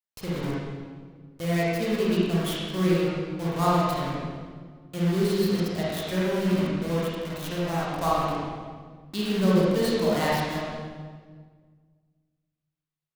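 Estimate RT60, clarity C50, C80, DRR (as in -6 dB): 1.7 s, -4.0 dB, -1.0 dB, -7.5 dB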